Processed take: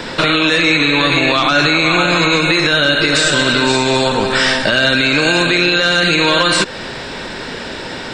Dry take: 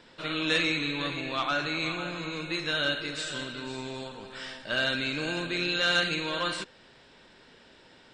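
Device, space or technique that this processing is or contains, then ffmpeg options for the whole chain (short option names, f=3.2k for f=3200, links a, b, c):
mastering chain: -filter_complex "[0:a]equalizer=f=3.1k:t=o:w=0.31:g=-4,acrossover=split=460|2000[a][b][c];[a]acompressor=threshold=-43dB:ratio=4[d];[b]acompressor=threshold=-40dB:ratio=4[e];[c]acompressor=threshold=-39dB:ratio=4[f];[d][e][f]amix=inputs=3:normalize=0,acompressor=threshold=-43dB:ratio=1.5,alimiter=level_in=32dB:limit=-1dB:release=50:level=0:latency=1,volume=-2dB"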